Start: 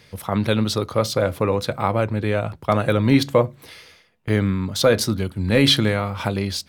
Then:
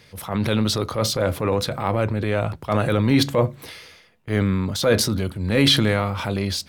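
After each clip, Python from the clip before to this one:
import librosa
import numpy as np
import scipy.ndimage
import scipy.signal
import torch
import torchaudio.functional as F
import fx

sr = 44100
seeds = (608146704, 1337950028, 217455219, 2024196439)

y = fx.transient(x, sr, attack_db=-7, sustain_db=5)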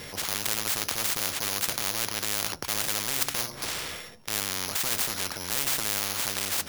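y = np.r_[np.sort(x[:len(x) // 8 * 8].reshape(-1, 8), axis=1).ravel(), x[len(x) // 8 * 8:]]
y = fx.spectral_comp(y, sr, ratio=10.0)
y = y * 10.0 ** (-1.5 / 20.0)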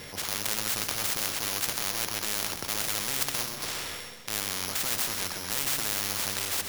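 y = fx.echo_feedback(x, sr, ms=129, feedback_pct=54, wet_db=-8.5)
y = y * 10.0 ** (-2.0 / 20.0)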